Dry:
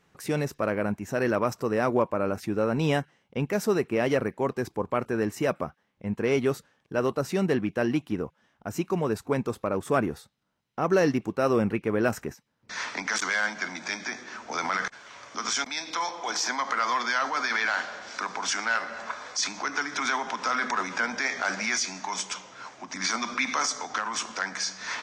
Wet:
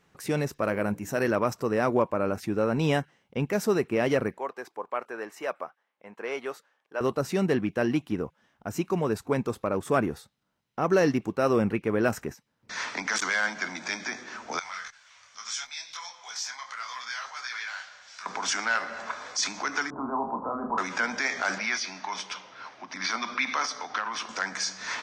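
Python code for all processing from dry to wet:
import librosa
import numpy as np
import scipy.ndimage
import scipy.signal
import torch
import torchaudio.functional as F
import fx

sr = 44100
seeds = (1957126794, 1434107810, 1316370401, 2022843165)

y = fx.chain(x, sr, fx.high_shelf(hz=7300.0, db=8.5),
    fx.hum_notches(base_hz=60, count=9), at=(0.64, 1.28))
y = fx.chain(y, sr, fx.highpass(hz=680.0, slope=12),
    fx.high_shelf(hz=2700.0, db=-9.5), at=(4.38, 7.01))
y = fx.chain(y, sr, fx.tone_stack(knobs='10-0-10'),
    fx.detune_double(cents=26), at=(14.59, 18.26))
y = fx.chain(y, sr, fx.steep_lowpass(hz=1100.0, slope=48),
    fx.low_shelf(hz=340.0, db=6.5),
    fx.doubler(ms=30.0, db=-6), at=(19.9, 20.78))
y = fx.chain(y, sr, fx.savgol(points=15),
    fx.low_shelf(hz=430.0, db=-6.0), at=(21.58, 24.29))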